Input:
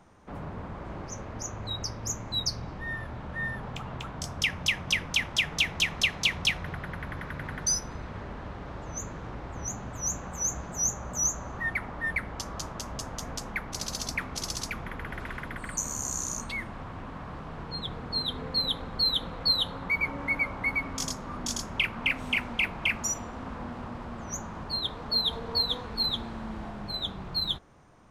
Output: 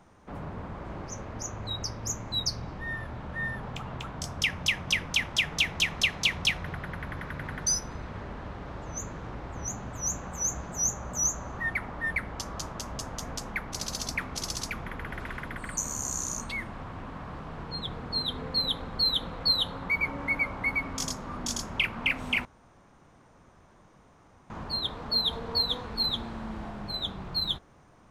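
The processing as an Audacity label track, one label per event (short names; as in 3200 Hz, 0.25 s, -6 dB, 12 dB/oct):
22.450000	24.500000	room tone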